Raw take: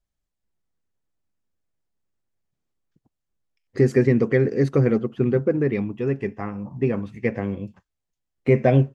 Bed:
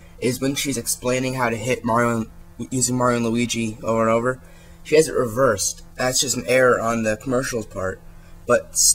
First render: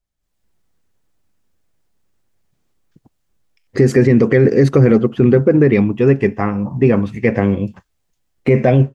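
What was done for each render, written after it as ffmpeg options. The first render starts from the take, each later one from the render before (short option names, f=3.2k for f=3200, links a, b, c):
-af "alimiter=limit=-14.5dB:level=0:latency=1:release=34,dynaudnorm=f=180:g=3:m=14dB"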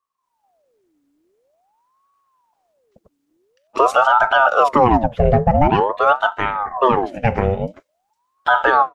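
-af "aeval=exprs='val(0)*sin(2*PI*700*n/s+700*0.6/0.47*sin(2*PI*0.47*n/s))':c=same"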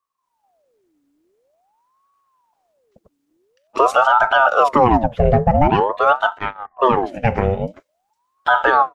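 -filter_complex "[0:a]asplit=3[a][b][c];[a]afade=t=out:st=6.37:d=0.02[d];[b]agate=range=-30dB:threshold=-21dB:ratio=16:release=100:detection=peak,afade=t=in:st=6.37:d=0.02,afade=t=out:st=6.78:d=0.02[e];[c]afade=t=in:st=6.78:d=0.02[f];[d][e][f]amix=inputs=3:normalize=0"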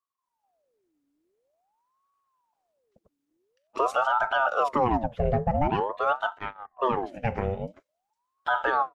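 -af "volume=-10.5dB"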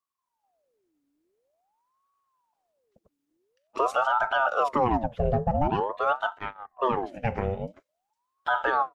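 -filter_complex "[0:a]asettb=1/sr,asplit=3[a][b][c];[a]atrim=end=5.184[d];[b]atrim=start=5.18:end=5.83,asetpts=PTS-STARTPTS,afade=t=in:d=0.004:c=qsin,afade=t=out:st=0.646:d=0.004:c=qsin,equalizer=f=2.1k:w=3.8:g=-11[e];[c]atrim=start=5.826[f];[d][e]acrossfade=d=0.004:c1=hsin:c2=qsin[g];[g][f]acrossfade=d=0.004:c1=qsin:c2=hsin"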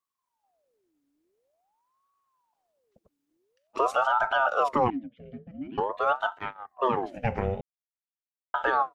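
-filter_complex "[0:a]asettb=1/sr,asplit=3[a][b][c];[a]atrim=end=4.904[d];[b]atrim=start=4.9:end=5.78,asetpts=PTS-STARTPTS,afade=t=in:d=0.004:c=qsin,afade=t=out:st=0.876:d=0.004:c=qsin,asplit=3[e][f][g];[e]bandpass=f=270:t=q:w=8,volume=0dB[h];[f]bandpass=f=2.29k:t=q:w=8,volume=-6dB[i];[g]bandpass=f=3.01k:t=q:w=8,volume=-9dB[j];[h][i][j]amix=inputs=3:normalize=0[k];[c]atrim=start=5.776[l];[d][k]acrossfade=d=0.004:c1=hsin:c2=qsin[m];[m][l]acrossfade=d=0.004:c1=qsin:c2=hsin,asettb=1/sr,asplit=3[n][o][p];[n]atrim=end=6.294[q];[o]atrim=start=6.29:end=7.05,asetpts=PTS-STARTPTS,afade=t=in:d=0.004:c=qsin,afade=t=out:st=0.756:d=0.004:c=qsin,highpass=79[r];[p]atrim=start=7.046[s];[q][r]acrossfade=d=0.004:c1=hsin:c2=qsin[t];[t][s]acrossfade=d=0.004:c1=qsin:c2=hsin,asplit=3[u][v][w];[u]atrim=end=7.61,asetpts=PTS-STARTPTS,afade=t=out:st=7.606:d=0.004:c=hsin[x];[v]atrim=start=7.61:end=8.54,asetpts=PTS-STARTPTS,volume=0[y];[w]atrim=start=8.54,asetpts=PTS-STARTPTS,afade=t=in:d=0.004:c=hsin[z];[x][y][z]concat=n=3:v=0:a=1"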